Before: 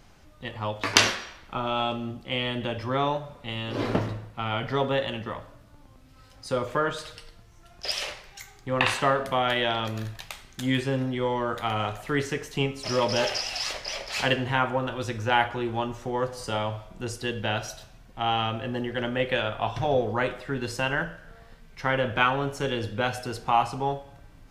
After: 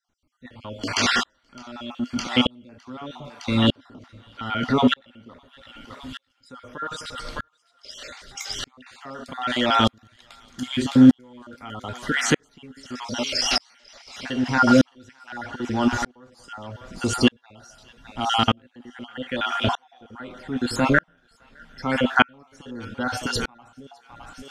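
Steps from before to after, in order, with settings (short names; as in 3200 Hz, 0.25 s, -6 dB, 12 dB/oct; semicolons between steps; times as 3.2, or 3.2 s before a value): random spectral dropouts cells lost 39%; high shelf 4000 Hz +11 dB; notch 2600 Hz, Q 9.6; in parallel at -2.5 dB: negative-ratio compressor -33 dBFS; on the sum: air absorption 60 m; small resonant body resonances 250/1400/2600 Hz, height 13 dB, ringing for 65 ms; on a send: thinning echo 0.611 s, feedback 58%, high-pass 1100 Hz, level -10.5 dB; on the sum: maximiser +8 dB; dB-ramp tremolo swelling 0.81 Hz, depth 40 dB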